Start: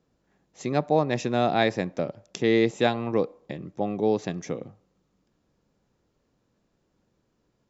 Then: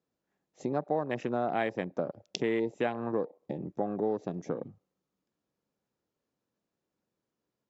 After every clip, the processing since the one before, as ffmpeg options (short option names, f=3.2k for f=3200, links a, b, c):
-af "acompressor=threshold=-33dB:ratio=3,afwtdn=0.00708,highpass=f=210:p=1,volume=4.5dB"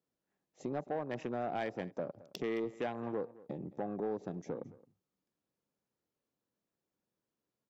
-af "asoftclip=type=tanh:threshold=-23dB,aecho=1:1:218:0.1,volume=-4.5dB"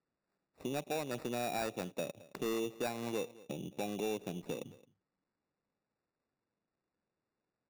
-af "acrusher=samples=14:mix=1:aa=0.000001"